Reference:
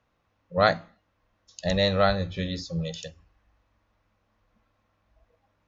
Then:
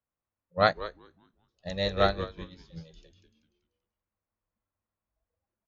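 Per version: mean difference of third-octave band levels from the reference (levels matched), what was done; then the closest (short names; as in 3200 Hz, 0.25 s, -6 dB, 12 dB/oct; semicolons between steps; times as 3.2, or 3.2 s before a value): 6.5 dB: low-pass opened by the level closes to 2700 Hz, open at -23 dBFS; frequency-shifting echo 0.193 s, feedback 39%, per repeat -130 Hz, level -6 dB; upward expander 2.5:1, over -31 dBFS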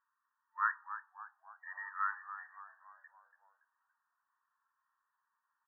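19.0 dB: FFT band-pass 890–1900 Hz; on a send: frequency-shifting echo 0.284 s, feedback 49%, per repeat -81 Hz, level -11.5 dB; on the sum: gain -6.5 dB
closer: first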